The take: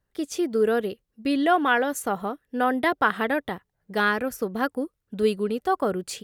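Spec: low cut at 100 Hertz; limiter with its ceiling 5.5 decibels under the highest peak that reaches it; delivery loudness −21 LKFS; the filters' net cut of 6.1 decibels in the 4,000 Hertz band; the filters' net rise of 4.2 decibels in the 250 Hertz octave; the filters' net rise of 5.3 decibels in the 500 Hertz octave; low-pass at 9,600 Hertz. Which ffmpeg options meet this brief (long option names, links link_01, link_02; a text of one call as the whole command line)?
ffmpeg -i in.wav -af "highpass=100,lowpass=9600,equalizer=frequency=250:width_type=o:gain=3.5,equalizer=frequency=500:width_type=o:gain=5.5,equalizer=frequency=4000:width_type=o:gain=-8.5,volume=2dB,alimiter=limit=-9.5dB:level=0:latency=1" out.wav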